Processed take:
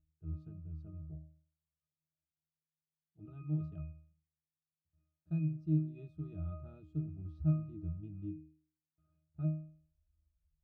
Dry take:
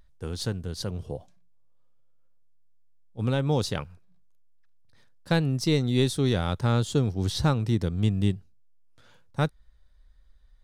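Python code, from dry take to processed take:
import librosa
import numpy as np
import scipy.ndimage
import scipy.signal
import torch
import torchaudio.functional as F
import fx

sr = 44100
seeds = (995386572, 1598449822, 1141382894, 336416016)

y = fx.low_shelf(x, sr, hz=390.0, db=11.5)
y = fx.octave_resonator(y, sr, note='D#', decay_s=0.5)
y = y * 10.0 ** (-8.5 / 20.0)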